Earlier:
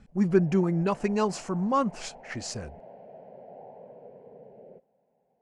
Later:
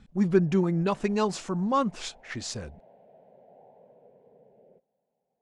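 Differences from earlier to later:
background −8.5 dB
master: add parametric band 3,600 Hz +11 dB 0.27 octaves

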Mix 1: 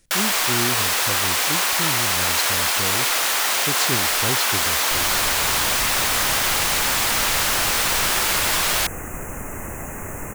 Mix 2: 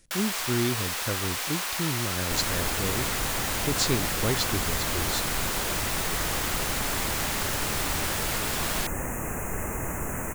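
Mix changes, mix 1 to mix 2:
first sound −10.5 dB
second sound: entry −2.60 s

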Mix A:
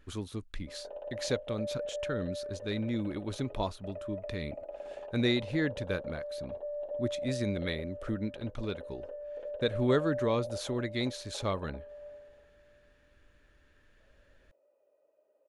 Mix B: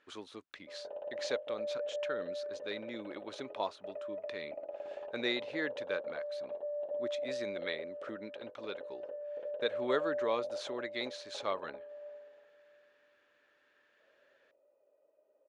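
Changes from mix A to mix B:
speech: add high-pass filter 500 Hz 12 dB per octave
master: add high-frequency loss of the air 100 metres

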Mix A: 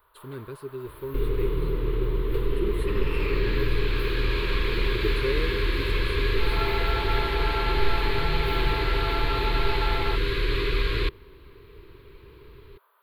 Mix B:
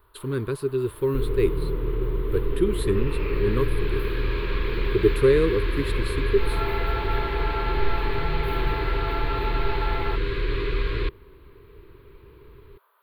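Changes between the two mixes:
speech +11.0 dB
second sound: add low-pass filter 1,900 Hz 6 dB per octave

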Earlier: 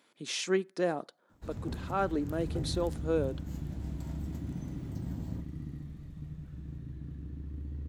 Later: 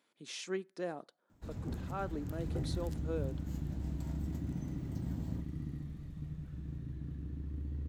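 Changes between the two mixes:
speech −9.0 dB
first sound: send −6.5 dB

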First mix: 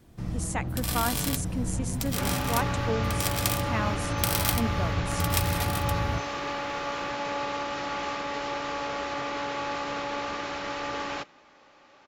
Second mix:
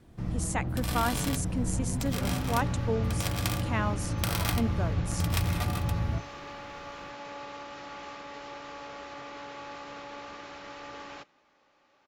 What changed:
first sound: add high-shelf EQ 4,800 Hz −9.5 dB
second sound −10.5 dB

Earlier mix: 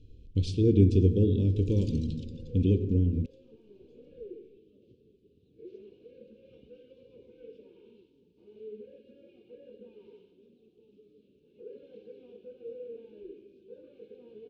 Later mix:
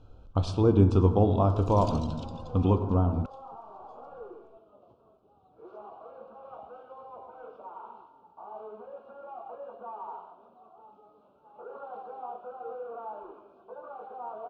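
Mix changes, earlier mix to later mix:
first sound +5.5 dB
second sound −4.0 dB
master: remove inverse Chebyshev band-stop filter 640–1,400 Hz, stop band 40 dB

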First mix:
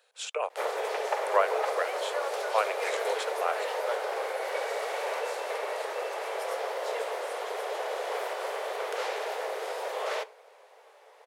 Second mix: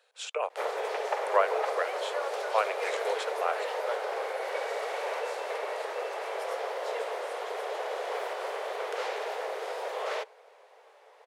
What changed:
background: send −9.0 dB
master: add high-shelf EQ 8,000 Hz −7.5 dB

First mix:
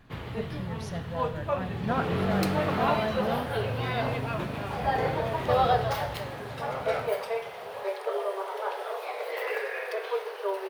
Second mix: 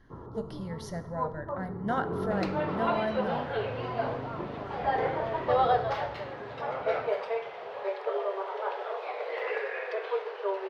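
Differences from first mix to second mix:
first sound: add Chebyshev low-pass with heavy ripple 1,400 Hz, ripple 9 dB
second sound: add high-frequency loss of the air 190 metres

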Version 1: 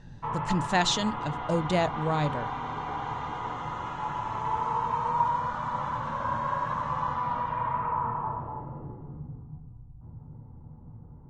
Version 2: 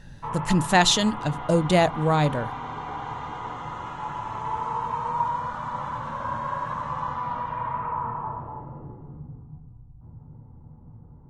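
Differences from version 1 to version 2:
speech +6.5 dB
master: remove low-pass filter 7,700 Hz 24 dB per octave

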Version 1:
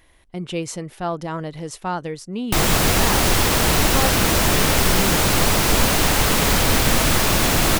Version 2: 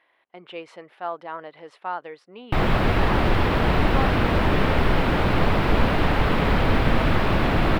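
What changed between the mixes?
speech: add high-pass filter 670 Hz 12 dB per octave
master: add high-frequency loss of the air 440 metres

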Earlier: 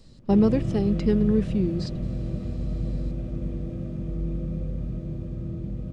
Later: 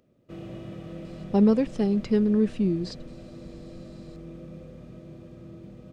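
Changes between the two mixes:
speech: entry +1.05 s
background: add high-pass filter 630 Hz 6 dB per octave

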